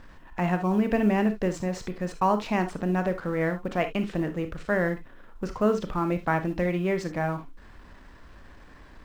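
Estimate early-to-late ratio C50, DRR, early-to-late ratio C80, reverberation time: 11.5 dB, 8.0 dB, 27.0 dB, non-exponential decay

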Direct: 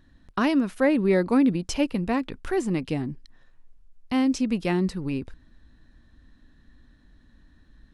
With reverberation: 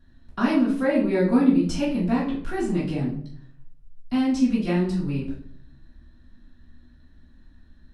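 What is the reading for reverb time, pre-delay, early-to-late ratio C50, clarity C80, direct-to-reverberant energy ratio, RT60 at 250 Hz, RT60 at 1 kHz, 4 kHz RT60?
0.60 s, 3 ms, 5.0 dB, 10.0 dB, −10.0 dB, 0.80 s, 0.50 s, 0.40 s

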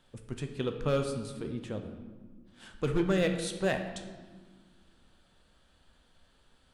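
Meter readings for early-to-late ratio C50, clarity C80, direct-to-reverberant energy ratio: 7.5 dB, 9.5 dB, 5.0 dB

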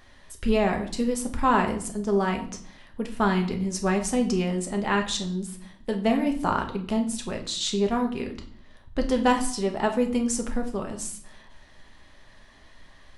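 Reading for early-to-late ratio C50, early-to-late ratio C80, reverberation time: 11.0 dB, 15.0 dB, 0.55 s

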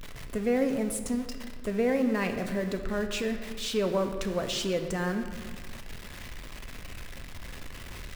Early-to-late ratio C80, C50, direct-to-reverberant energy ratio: 9.5 dB, 8.0 dB, 5.5 dB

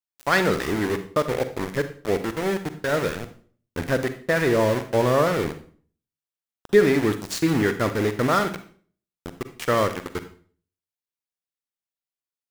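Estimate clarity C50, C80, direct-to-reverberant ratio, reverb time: 11.0 dB, 15.5 dB, 9.5 dB, 0.45 s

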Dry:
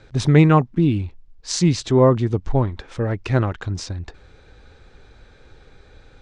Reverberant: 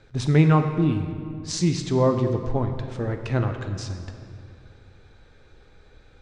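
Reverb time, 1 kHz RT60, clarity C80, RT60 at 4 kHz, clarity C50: 2.4 s, 2.2 s, 8.5 dB, 1.5 s, 7.5 dB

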